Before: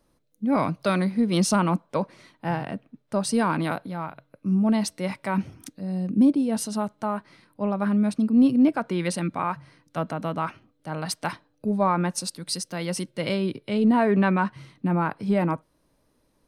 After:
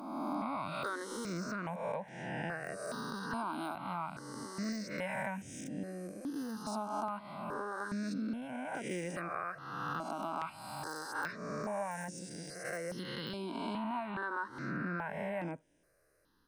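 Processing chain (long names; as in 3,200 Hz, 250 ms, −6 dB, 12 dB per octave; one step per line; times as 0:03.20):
peak hold with a rise ahead of every peak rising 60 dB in 1.38 s
parametric band 1,600 Hz +6.5 dB 0.35 octaves
downward compressor 10 to 1, threshold −26 dBFS, peak gain reduction 13.5 dB
low-shelf EQ 180 Hz −10.5 dB
de-essing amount 90%
step-sequenced phaser 2.4 Hz 490–4,300 Hz
level −3 dB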